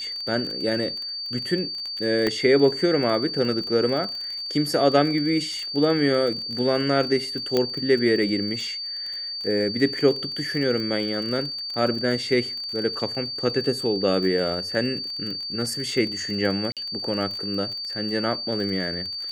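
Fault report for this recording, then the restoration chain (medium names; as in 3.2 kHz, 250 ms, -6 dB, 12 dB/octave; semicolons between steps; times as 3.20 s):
crackle 29 per s -30 dBFS
whine 4.6 kHz -29 dBFS
2.27 s: pop -10 dBFS
7.57 s: pop -8 dBFS
16.72–16.77 s: dropout 47 ms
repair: de-click; band-stop 4.6 kHz, Q 30; interpolate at 16.72 s, 47 ms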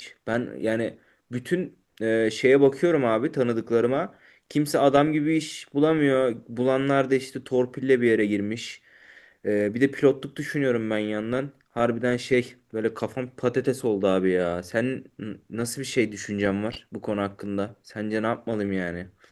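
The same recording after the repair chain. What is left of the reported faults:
2.27 s: pop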